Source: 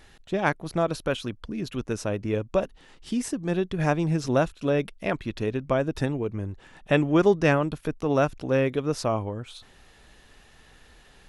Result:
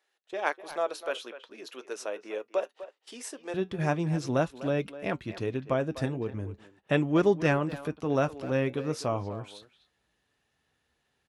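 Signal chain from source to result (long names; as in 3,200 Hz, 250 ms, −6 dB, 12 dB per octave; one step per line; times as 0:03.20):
high-pass filter 410 Hz 24 dB per octave, from 0:03.54 61 Hz
noise gate −47 dBFS, range −16 dB
flanger 0.41 Hz, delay 5.3 ms, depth 3.4 ms, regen −68%
far-end echo of a speakerphone 250 ms, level −13 dB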